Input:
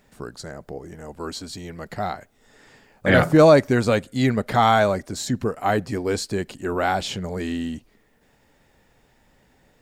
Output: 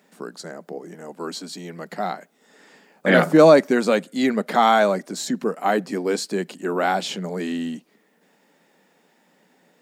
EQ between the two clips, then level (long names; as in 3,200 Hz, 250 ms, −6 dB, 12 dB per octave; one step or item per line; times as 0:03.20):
elliptic high-pass filter 170 Hz, stop band 40 dB
+1.5 dB